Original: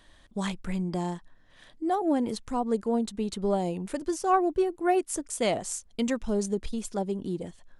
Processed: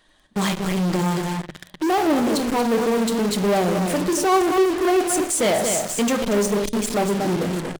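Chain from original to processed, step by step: bin magnitudes rounded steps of 15 dB; on a send: echo 0.234 s -9.5 dB; on the sum: reverb RT60 0.55 s, pre-delay 3 ms, DRR 7.5 dB; in parallel at -8.5 dB: fuzz box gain 51 dB, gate -43 dBFS; on the sum: low shelf 68 Hz -11 dB; notches 50/100/150 Hz

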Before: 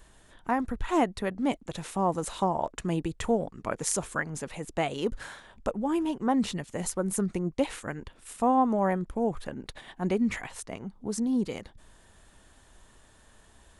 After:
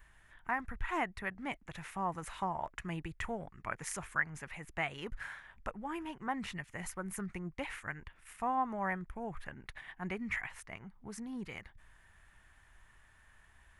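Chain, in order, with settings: graphic EQ 250/500/2000/4000/8000 Hz -9/-10/+9/-8/-8 dB; gain -5 dB

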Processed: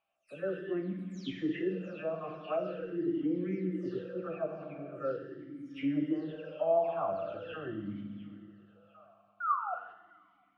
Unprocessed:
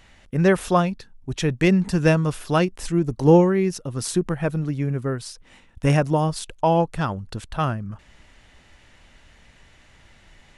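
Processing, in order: spectral delay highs early, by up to 0.294 s; de-esser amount 55%; painted sound fall, 9.4–9.74, 700–1500 Hz -15 dBFS; gate -40 dBFS, range -20 dB; reverse; compressor, threshold -25 dBFS, peak gain reduction 15 dB; reverse; treble ducked by the level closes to 2300 Hz, closed at -28.5 dBFS; thinning echo 0.702 s, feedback 42%, high-pass 410 Hz, level -15.5 dB; on a send at -3 dB: reverb RT60 2.3 s, pre-delay 5 ms; on the sum: vowel sweep a-i 0.43 Hz; gain +4.5 dB

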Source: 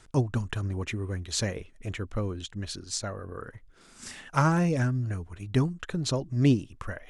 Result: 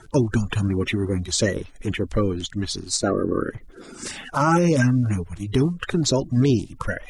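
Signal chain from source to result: bin magnitudes rounded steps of 30 dB; 3.02–4.08 bell 330 Hz +11.5 dB 1.5 oct; maximiser +18.5 dB; gain -9 dB

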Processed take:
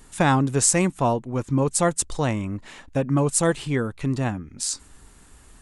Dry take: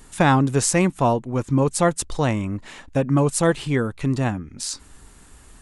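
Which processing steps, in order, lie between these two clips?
dynamic EQ 8000 Hz, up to +7 dB, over -40 dBFS, Q 1.4; gain -2.5 dB

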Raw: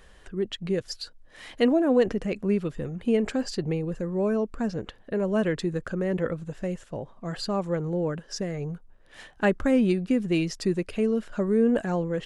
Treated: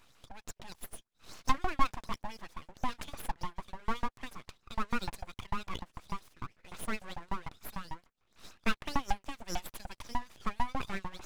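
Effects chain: speed mistake 44.1 kHz file played as 48 kHz; LFO high-pass saw up 6.7 Hz 350–3500 Hz; full-wave rectifier; gain -6 dB

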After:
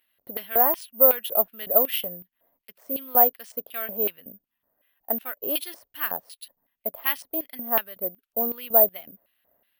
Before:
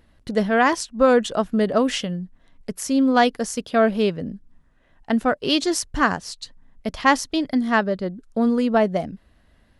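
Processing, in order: high shelf 6700 Hz -11 dB; LFO band-pass square 2.7 Hz 630–2900 Hz; careless resampling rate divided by 3×, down none, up zero stuff; gain -1 dB

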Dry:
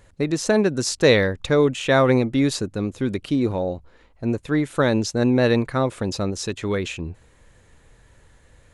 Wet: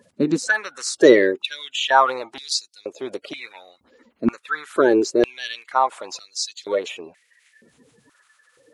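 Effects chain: bin magnitudes rounded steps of 30 dB; stepped high-pass 2.1 Hz 240–4600 Hz; gain -1 dB

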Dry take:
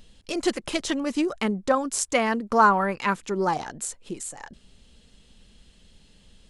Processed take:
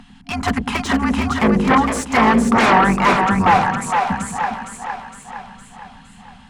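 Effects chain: octaver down 2 oct, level -1 dB; FFT band-reject 270–700 Hz; sine folder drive 17 dB, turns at -4.5 dBFS; added harmonics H 8 -37 dB, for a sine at -2.5 dBFS; three-band isolator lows -16 dB, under 160 Hz, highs -17 dB, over 2100 Hz; on a send: split-band echo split 480 Hz, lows 0.102 s, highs 0.461 s, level -4.5 dB; on the sum: gain -3 dB

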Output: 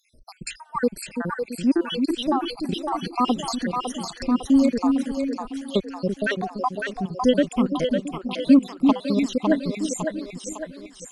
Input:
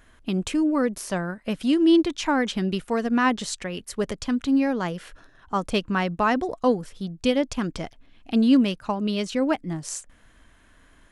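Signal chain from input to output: random spectral dropouts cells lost 72%; split-band echo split 380 Hz, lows 0.335 s, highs 0.555 s, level -4 dB; gain +4 dB

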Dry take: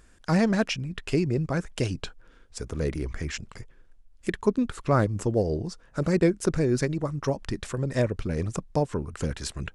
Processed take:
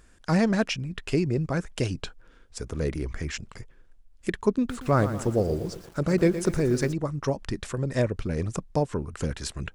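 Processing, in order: 4.57–6.93 lo-fi delay 0.117 s, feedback 55%, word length 7-bit, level -11 dB

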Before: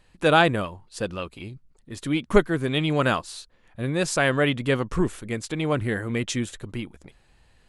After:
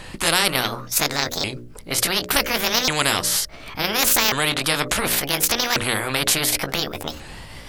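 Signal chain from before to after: repeated pitch sweeps +8.5 st, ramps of 1.44 s; notches 60/120/180/240/300/360/420/480/540/600 Hz; spectral compressor 4:1; gain +2 dB

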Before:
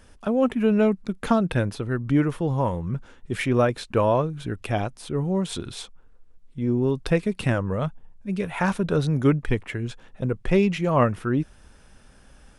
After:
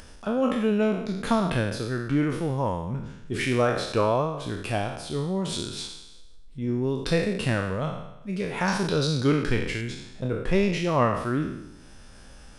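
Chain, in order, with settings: spectral trails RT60 0.85 s; bell 5000 Hz +5.5 dB 0.83 oct, from 8.68 s +15 dB, from 9.81 s +5.5 dB; upward compressor, threshold -35 dBFS; gain -4 dB

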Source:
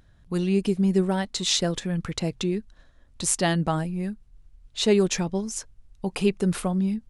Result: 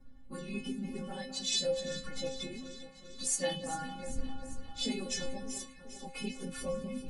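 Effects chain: phase scrambler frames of 50 ms; wind noise 100 Hz -36 dBFS; metallic resonator 260 Hz, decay 0.44 s, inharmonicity 0.008; echo with dull and thin repeats by turns 0.198 s, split 1800 Hz, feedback 78%, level -11 dB; dynamic EQ 1100 Hz, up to -5 dB, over -60 dBFS, Q 1.2; gain +8 dB

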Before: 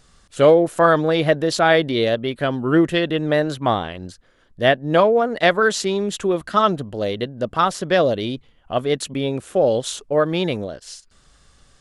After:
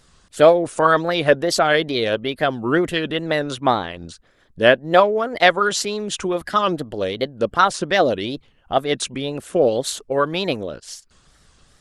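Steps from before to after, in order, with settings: harmonic-percussive split percussive +8 dB; wow and flutter 130 cents; gain -4.5 dB

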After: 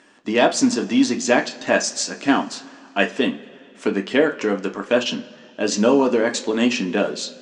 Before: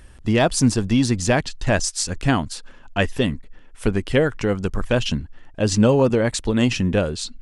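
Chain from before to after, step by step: elliptic band-pass 220–7200 Hz, stop band 40 dB; on a send: reverb, pre-delay 3 ms, DRR 3 dB; on the sum: gain +1 dB

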